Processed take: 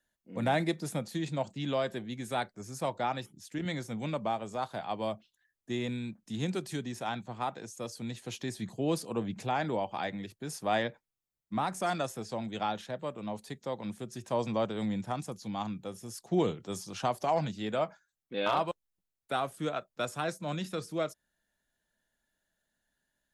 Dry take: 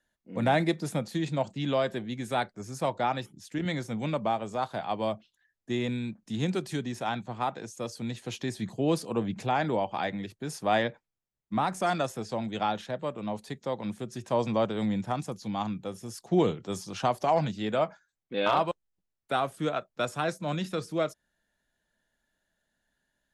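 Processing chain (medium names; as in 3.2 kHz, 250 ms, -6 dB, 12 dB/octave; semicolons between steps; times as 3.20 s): treble shelf 7.2 kHz +6.5 dB; trim -4 dB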